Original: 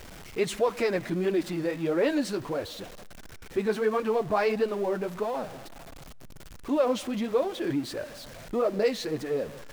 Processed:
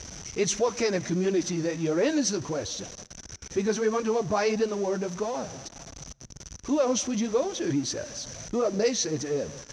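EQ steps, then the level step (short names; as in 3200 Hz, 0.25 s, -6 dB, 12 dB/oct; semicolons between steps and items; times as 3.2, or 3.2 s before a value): HPF 52 Hz; synth low-pass 6000 Hz, resonance Q 15; low shelf 200 Hz +9 dB; -1.5 dB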